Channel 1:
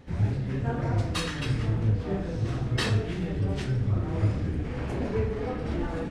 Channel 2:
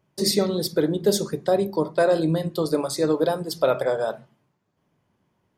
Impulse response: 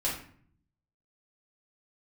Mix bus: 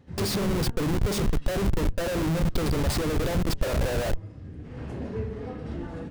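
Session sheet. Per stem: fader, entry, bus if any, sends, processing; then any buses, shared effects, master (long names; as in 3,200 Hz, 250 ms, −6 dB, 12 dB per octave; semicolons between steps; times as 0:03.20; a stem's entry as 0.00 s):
−7.5 dB, 0.00 s, send −23 dB, high-pass filter 170 Hz 6 dB per octave; notch filter 2,300 Hz, Q 17; automatic ducking −19 dB, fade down 0.90 s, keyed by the second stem
−3.0 dB, 0.00 s, no send, tilt shelving filter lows −3 dB, about 730 Hz; amplitude modulation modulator 62 Hz, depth 25%; comparator with hysteresis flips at −32 dBFS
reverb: on, RT60 0.55 s, pre-delay 4 ms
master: low-shelf EQ 220 Hz +11.5 dB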